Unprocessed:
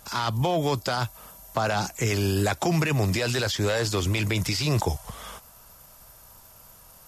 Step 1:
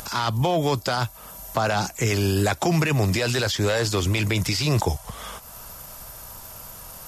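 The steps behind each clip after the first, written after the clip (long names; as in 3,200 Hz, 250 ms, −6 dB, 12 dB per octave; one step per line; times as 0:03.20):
upward compression, threshold −33 dBFS
level +2.5 dB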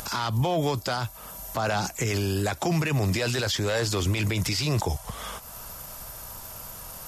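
brickwall limiter −17.5 dBFS, peak gain reduction 7 dB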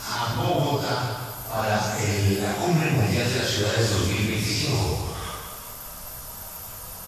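random phases in long frames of 200 ms
flanger 1.6 Hz, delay 7.6 ms, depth 4.3 ms, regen +71%
repeating echo 179 ms, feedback 44%, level −7 dB
level +6 dB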